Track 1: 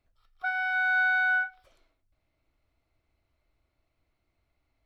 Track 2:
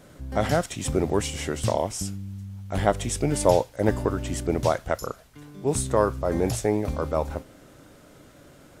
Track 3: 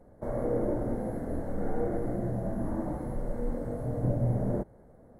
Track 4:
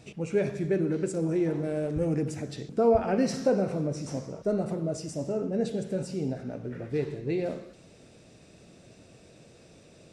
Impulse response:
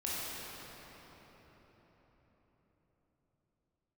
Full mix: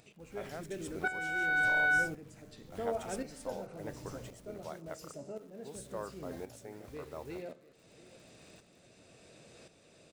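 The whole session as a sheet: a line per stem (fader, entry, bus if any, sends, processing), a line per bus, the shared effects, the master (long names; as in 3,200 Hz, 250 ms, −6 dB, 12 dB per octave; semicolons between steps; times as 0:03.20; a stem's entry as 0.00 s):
−0.5 dB, 0.60 s, no send, no echo send, no processing
−15.5 dB, 0.00 s, no send, no echo send, bit reduction 7 bits
−15.0 dB, 0.00 s, no send, no echo send, inverse Chebyshev low-pass filter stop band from 570 Hz
−9.0 dB, 0.00 s, no send, echo send −15.5 dB, notch filter 5,600 Hz, Q 11; upward compression, threshold −31 dBFS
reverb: not used
echo: single-tap delay 683 ms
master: low-shelf EQ 390 Hz −8 dB; shaped tremolo saw up 0.93 Hz, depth 65%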